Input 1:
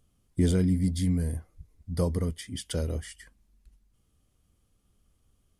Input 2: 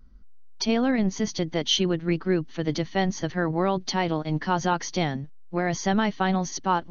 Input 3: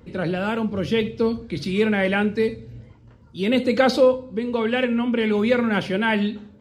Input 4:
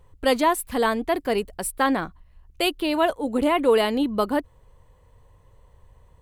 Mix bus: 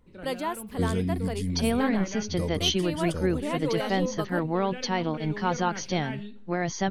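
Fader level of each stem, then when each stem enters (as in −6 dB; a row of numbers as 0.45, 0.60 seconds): −4.0, −2.5, −17.5, −11.0 decibels; 0.40, 0.95, 0.00, 0.00 seconds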